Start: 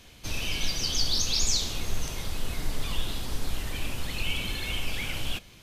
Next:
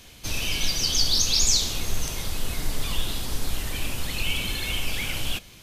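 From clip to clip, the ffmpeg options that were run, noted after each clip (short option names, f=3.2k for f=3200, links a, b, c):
-af "highshelf=f=5.3k:g=6,volume=2.5dB"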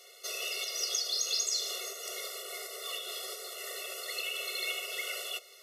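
-af "acompressor=threshold=-23dB:ratio=3,afftfilt=real='re*eq(mod(floor(b*sr/1024/370),2),1)':imag='im*eq(mod(floor(b*sr/1024/370),2),1)':win_size=1024:overlap=0.75,volume=-1dB"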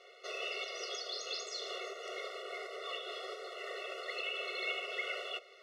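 -af "lowpass=2.3k,volume=2.5dB"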